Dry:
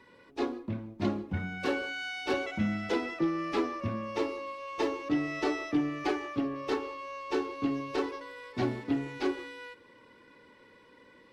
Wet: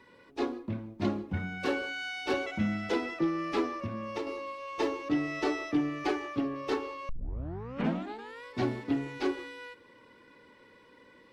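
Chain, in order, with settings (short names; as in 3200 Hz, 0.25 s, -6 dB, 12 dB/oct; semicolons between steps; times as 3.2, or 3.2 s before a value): 3.8–4.27 compressor, threshold -32 dBFS, peak gain reduction 7.5 dB; 7.09 tape start 1.35 s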